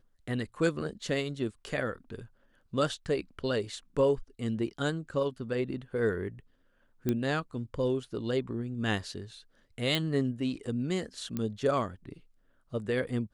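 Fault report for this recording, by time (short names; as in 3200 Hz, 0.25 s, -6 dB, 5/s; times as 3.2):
7.09 pop -16 dBFS
9.95 pop
11.37 pop -20 dBFS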